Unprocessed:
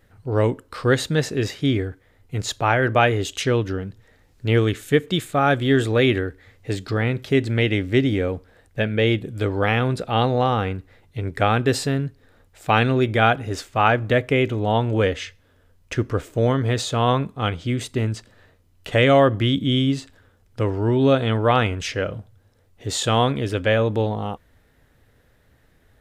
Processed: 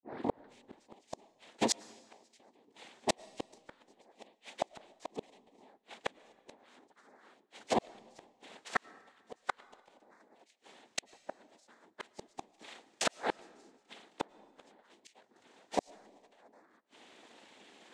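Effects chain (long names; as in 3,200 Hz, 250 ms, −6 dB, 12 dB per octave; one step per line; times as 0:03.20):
turntable start at the beginning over 1.63 s
Chebyshev band-pass filter 180–4,000 Hz, order 5
compressor whose output falls as the input rises −22 dBFS, ratio −0.5
change of speed 1.45×
cochlear-implant simulation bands 6
gate with flip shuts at −19 dBFS, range −42 dB
on a send: convolution reverb RT60 1.4 s, pre-delay 70 ms, DRR 22 dB
on the sum: level +3 dB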